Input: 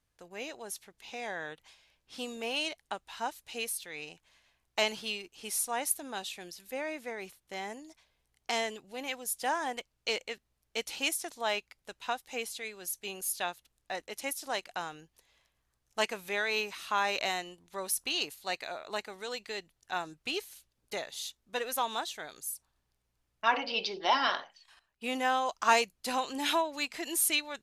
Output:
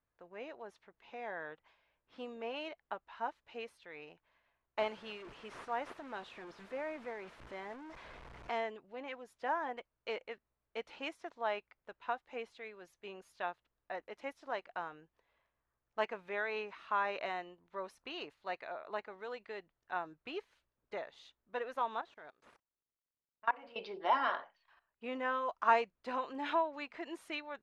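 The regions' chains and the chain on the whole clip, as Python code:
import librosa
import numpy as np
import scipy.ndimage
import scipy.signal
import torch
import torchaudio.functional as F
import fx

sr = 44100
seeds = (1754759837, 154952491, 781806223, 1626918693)

y = fx.chain(x, sr, fx.delta_mod(bps=64000, step_db=-37.5),
    fx.high_shelf(hz=9900.0, db=9.0), at=(4.79, 8.5))
y = fx.chain(y, sr, fx.cvsd(bps=64000),
    fx.level_steps(step_db=24), at=(22.01, 23.76))
y = scipy.signal.sosfilt(scipy.signal.butter(2, 1400.0, 'lowpass', fs=sr, output='sos'), y)
y = fx.low_shelf(y, sr, hz=350.0, db=-10.0)
y = fx.notch(y, sr, hz=780.0, q=12.0)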